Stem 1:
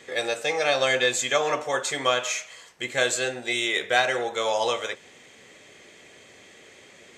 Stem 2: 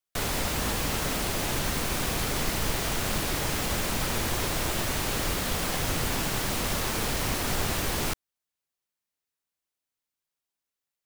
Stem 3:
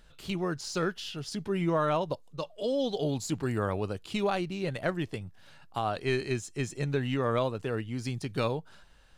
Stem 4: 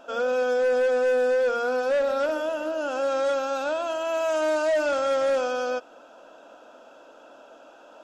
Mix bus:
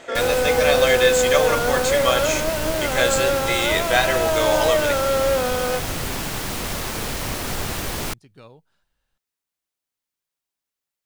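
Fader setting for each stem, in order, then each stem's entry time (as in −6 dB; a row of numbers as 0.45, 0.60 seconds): +2.5, +1.5, −16.0, +3.0 decibels; 0.00, 0.00, 0.00, 0.00 seconds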